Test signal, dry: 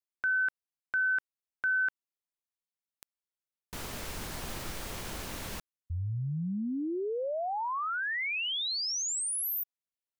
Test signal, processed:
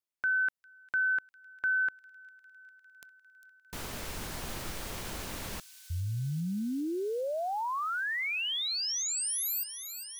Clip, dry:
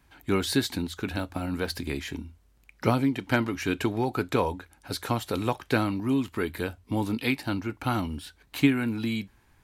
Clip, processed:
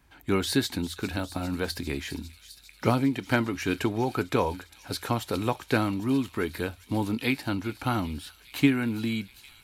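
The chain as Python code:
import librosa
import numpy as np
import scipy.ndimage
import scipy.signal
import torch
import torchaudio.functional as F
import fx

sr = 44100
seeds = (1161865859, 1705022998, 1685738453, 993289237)

y = fx.echo_wet_highpass(x, sr, ms=402, feedback_pct=81, hz=4000.0, wet_db=-11.5)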